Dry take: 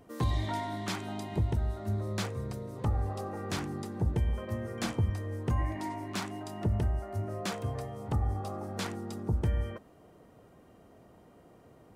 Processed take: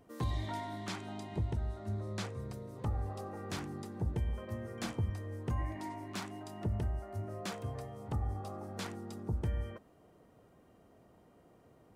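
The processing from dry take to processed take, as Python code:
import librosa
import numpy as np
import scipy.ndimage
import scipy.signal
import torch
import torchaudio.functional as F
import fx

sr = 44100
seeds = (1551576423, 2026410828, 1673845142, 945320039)

y = fx.lowpass(x, sr, hz=10000.0, slope=12, at=(0.88, 2.39))
y = y * librosa.db_to_amplitude(-5.5)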